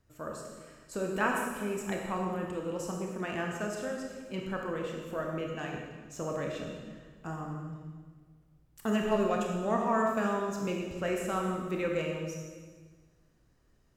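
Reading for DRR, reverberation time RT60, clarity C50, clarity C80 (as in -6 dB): 0.0 dB, 1.5 s, 2.0 dB, 3.5 dB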